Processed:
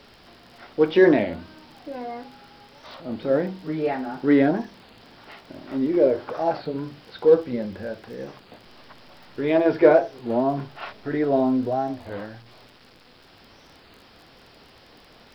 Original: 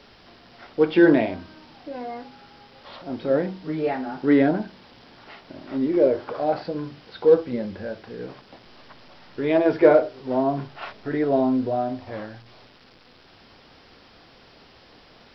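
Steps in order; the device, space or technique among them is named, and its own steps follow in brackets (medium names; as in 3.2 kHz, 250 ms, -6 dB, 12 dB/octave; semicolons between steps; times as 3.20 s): warped LP (warped record 33 1/3 rpm, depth 160 cents; crackle 27 per s -40 dBFS; pink noise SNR 43 dB)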